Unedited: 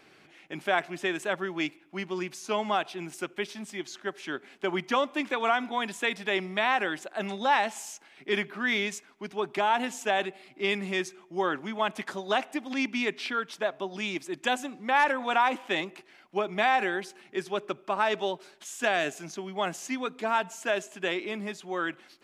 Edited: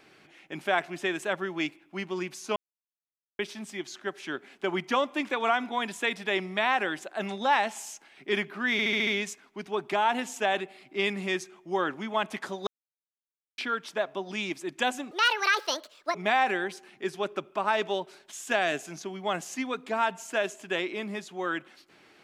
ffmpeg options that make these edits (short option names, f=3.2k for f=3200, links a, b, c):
-filter_complex "[0:a]asplit=12[a][b][c][d][e][f][g][h][i][j][k][l];[a]atrim=end=2.56,asetpts=PTS-STARTPTS,afade=t=out:st=2.556:d=0.004:c=hsin[m];[b]atrim=start=2.56:end=3.39,asetpts=PTS-STARTPTS,volume=0[n];[c]atrim=start=3.39:end=8.792,asetpts=PTS-STARTPTS,afade=t=in:d=0.004:c=hsin[o];[d]atrim=start=8.718:end=8.792[p];[e]atrim=start=8.718:end=8.792[q];[f]atrim=start=8.718:end=8.792[r];[g]atrim=start=8.718:end=8.792[s];[h]atrim=start=8.718:end=12.32,asetpts=PTS-STARTPTS,afade=t=out:st=3.598:d=0.004:c=hsin[t];[i]atrim=start=12.32:end=13.23,asetpts=PTS-STARTPTS,volume=0[u];[j]atrim=start=13.23:end=14.764,asetpts=PTS-STARTPTS,afade=t=in:d=0.004:c=hsin[v];[k]atrim=start=14.76:end=16.47,asetpts=PTS-STARTPTS,asetrate=72765,aresample=44100[w];[l]atrim=start=16.466[x];[m][n][o]concat=n=3:v=0:a=1[y];[y][p]acrossfade=d=0.004:c1=hsin:c2=hsin[z];[z][q]acrossfade=d=0.004:c1=hsin:c2=hsin[aa];[aa][r]acrossfade=d=0.004:c1=hsin:c2=hsin[ab];[ab][s]acrossfade=d=0.004:c1=hsin:c2=hsin[ac];[t][u][v]concat=n=3:v=0:a=1[ad];[ac][ad]acrossfade=d=0.004:c1=hsin:c2=hsin[ae];[ae][w]acrossfade=d=0.004:c1=hsin:c2=hsin[af];[af][x]acrossfade=d=0.004:c1=hsin:c2=hsin"